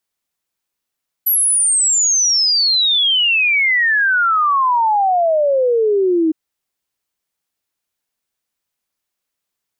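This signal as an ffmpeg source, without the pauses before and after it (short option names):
-f lavfi -i "aevalsrc='0.266*clip(min(t,5.06-t)/0.01,0,1)*sin(2*PI*12000*5.06/log(310/12000)*(exp(log(310/12000)*t/5.06)-1))':d=5.06:s=44100"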